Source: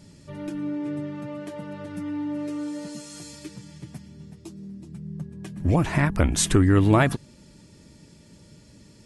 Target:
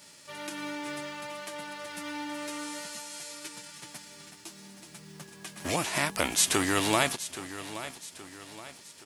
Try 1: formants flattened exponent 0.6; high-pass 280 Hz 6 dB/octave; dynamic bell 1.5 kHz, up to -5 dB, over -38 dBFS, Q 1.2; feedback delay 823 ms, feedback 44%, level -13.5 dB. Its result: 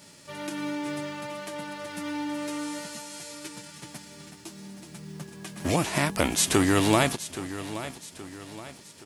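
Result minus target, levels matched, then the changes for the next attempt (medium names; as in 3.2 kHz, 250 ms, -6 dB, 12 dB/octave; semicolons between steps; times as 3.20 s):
250 Hz band +4.5 dB
change: high-pass 890 Hz 6 dB/octave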